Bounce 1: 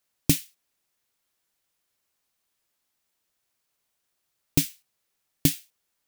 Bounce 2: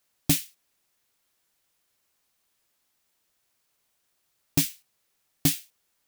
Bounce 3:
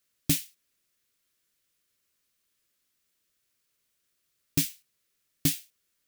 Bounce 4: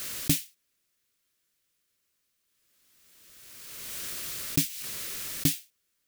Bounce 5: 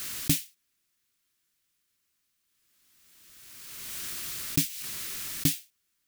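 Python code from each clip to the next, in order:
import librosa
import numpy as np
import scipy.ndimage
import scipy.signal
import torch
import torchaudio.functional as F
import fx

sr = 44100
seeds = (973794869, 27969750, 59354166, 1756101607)

y1 = 10.0 ** (-18.0 / 20.0) * np.tanh(x / 10.0 ** (-18.0 / 20.0))
y1 = y1 * 10.0 ** (4.0 / 20.0)
y2 = fx.peak_eq(y1, sr, hz=820.0, db=-13.0, octaves=0.63)
y2 = y2 * 10.0 ** (-2.5 / 20.0)
y3 = fx.pre_swell(y2, sr, db_per_s=26.0)
y4 = fx.peak_eq(y3, sr, hz=510.0, db=-10.0, octaves=0.41)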